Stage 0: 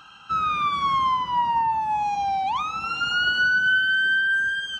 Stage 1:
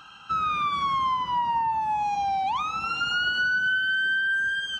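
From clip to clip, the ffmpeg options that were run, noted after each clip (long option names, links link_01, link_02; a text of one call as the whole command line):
ffmpeg -i in.wav -af "acompressor=threshold=-24dB:ratio=2.5" out.wav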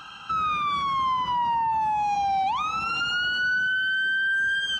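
ffmpeg -i in.wav -af "alimiter=level_in=1.5dB:limit=-24dB:level=0:latency=1:release=67,volume=-1.5dB,volume=5.5dB" out.wav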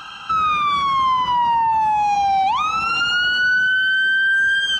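ffmpeg -i in.wav -af "equalizer=frequency=150:width_type=o:width=2.9:gain=-3.5,volume=7.5dB" out.wav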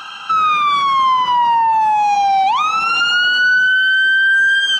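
ffmpeg -i in.wav -af "highpass=frequency=380:poles=1,volume=4.5dB" out.wav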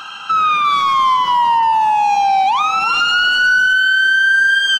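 ffmpeg -i in.wav -filter_complex "[0:a]asplit=2[link_01][link_02];[link_02]adelay=350,highpass=300,lowpass=3400,asoftclip=type=hard:threshold=-16.5dB,volume=-8dB[link_03];[link_01][link_03]amix=inputs=2:normalize=0" out.wav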